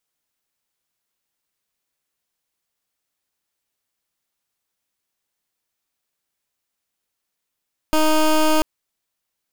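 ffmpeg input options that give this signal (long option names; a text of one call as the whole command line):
ffmpeg -f lavfi -i "aevalsrc='0.168*(2*lt(mod(311*t,1),0.16)-1)':duration=0.69:sample_rate=44100" out.wav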